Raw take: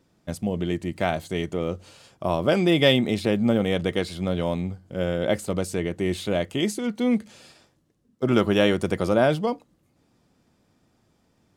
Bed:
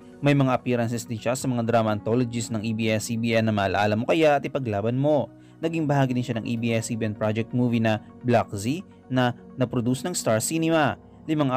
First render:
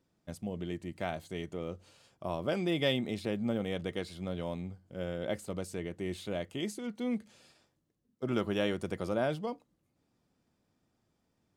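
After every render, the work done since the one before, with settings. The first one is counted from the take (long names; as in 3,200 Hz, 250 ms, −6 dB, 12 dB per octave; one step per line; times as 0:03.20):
level −11.5 dB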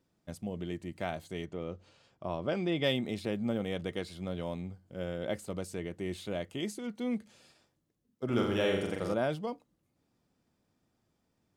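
0:01.45–0:02.84: high-frequency loss of the air 88 metres
0:08.25–0:09.14: flutter between parallel walls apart 7.1 metres, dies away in 0.73 s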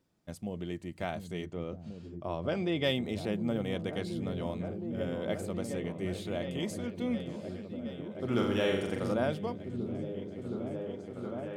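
echo whose low-pass opens from repeat to repeat 718 ms, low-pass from 200 Hz, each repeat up 1 octave, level −3 dB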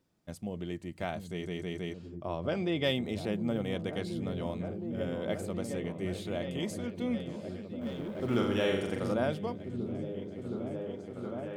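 0:01.30: stutter in place 0.16 s, 4 plays
0:07.81–0:08.37: mu-law and A-law mismatch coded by mu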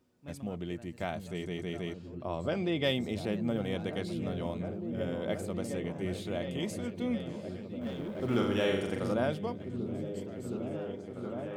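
mix in bed −29.5 dB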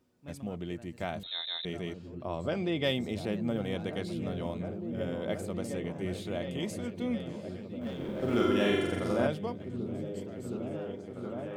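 0:01.23–0:01.65: voice inversion scrambler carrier 3,900 Hz
0:07.96–0:09.27: flutter between parallel walls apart 7.6 metres, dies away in 0.79 s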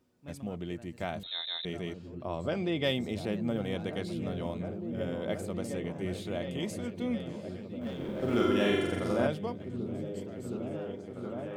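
no processing that can be heard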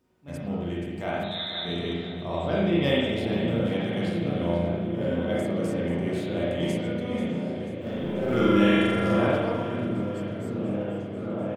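repeating echo 488 ms, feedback 53%, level −12.5 dB
spring reverb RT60 1.2 s, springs 35/50 ms, chirp 60 ms, DRR −6 dB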